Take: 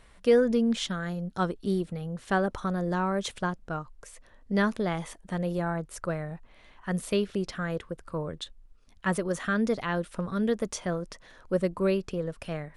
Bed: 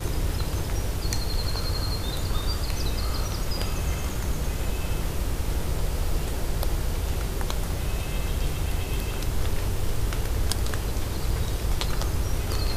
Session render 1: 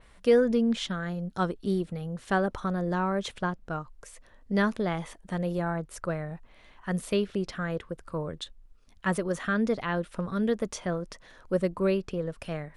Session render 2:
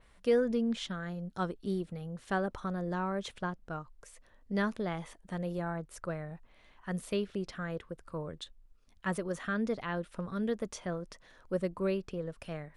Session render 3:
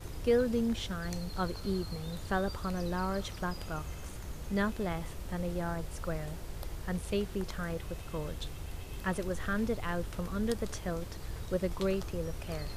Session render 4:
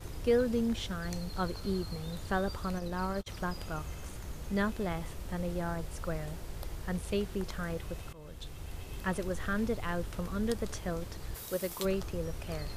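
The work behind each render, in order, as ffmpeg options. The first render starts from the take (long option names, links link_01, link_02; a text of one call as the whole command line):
ffmpeg -i in.wav -af "adynamicequalizer=threshold=0.00316:dfrequency=4700:dqfactor=0.7:tfrequency=4700:tqfactor=0.7:attack=5:release=100:ratio=0.375:range=4:mode=cutabove:tftype=highshelf" out.wav
ffmpeg -i in.wav -af "volume=-6dB" out.wav
ffmpeg -i in.wav -i bed.wav -filter_complex "[1:a]volume=-14.5dB[link_01];[0:a][link_01]amix=inputs=2:normalize=0" out.wav
ffmpeg -i in.wav -filter_complex "[0:a]asplit=3[link_01][link_02][link_03];[link_01]afade=type=out:start_time=2.78:duration=0.02[link_04];[link_02]agate=range=-35dB:threshold=-34dB:ratio=16:release=100:detection=peak,afade=type=in:start_time=2.78:duration=0.02,afade=type=out:start_time=3.26:duration=0.02[link_05];[link_03]afade=type=in:start_time=3.26:duration=0.02[link_06];[link_04][link_05][link_06]amix=inputs=3:normalize=0,asplit=3[link_07][link_08][link_09];[link_07]afade=type=out:start_time=11.34:duration=0.02[link_10];[link_08]aemphasis=mode=production:type=bsi,afade=type=in:start_time=11.34:duration=0.02,afade=type=out:start_time=11.84:duration=0.02[link_11];[link_09]afade=type=in:start_time=11.84:duration=0.02[link_12];[link_10][link_11][link_12]amix=inputs=3:normalize=0,asplit=2[link_13][link_14];[link_13]atrim=end=8.13,asetpts=PTS-STARTPTS,afade=type=out:start_time=8.126:duration=0.004:curve=hsin:silence=0.105925[link_15];[link_14]atrim=start=8.13,asetpts=PTS-STARTPTS,afade=type=in:duration=0.83:curve=qsin:silence=0.105925[link_16];[link_15][link_16]concat=n=2:v=0:a=1" out.wav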